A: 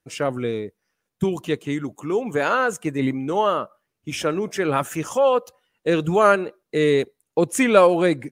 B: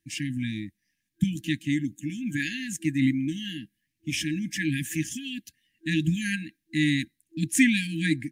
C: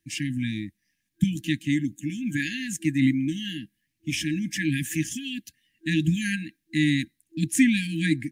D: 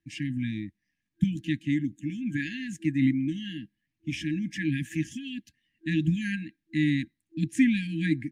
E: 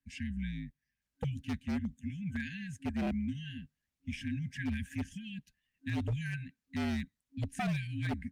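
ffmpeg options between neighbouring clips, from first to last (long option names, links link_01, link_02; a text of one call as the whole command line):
ffmpeg -i in.wav -af "afftfilt=real='re*(1-between(b*sr/4096,330,1600))':imag='im*(1-between(b*sr/4096,330,1600))':win_size=4096:overlap=0.75" out.wav
ffmpeg -i in.wav -filter_complex "[0:a]acrossover=split=460[link_01][link_02];[link_02]acompressor=threshold=-28dB:ratio=2.5[link_03];[link_01][link_03]amix=inputs=2:normalize=0,volume=2dB" out.wav
ffmpeg -i in.wav -af "aemphasis=mode=reproduction:type=75fm,volume=-3dB" out.wav
ffmpeg -i in.wav -af "aeval=exprs='0.0891*(abs(mod(val(0)/0.0891+3,4)-2)-1)':channel_layout=same,afreqshift=-56,volume=-6.5dB" -ar 48000 -c:a libopus -b:a 48k out.opus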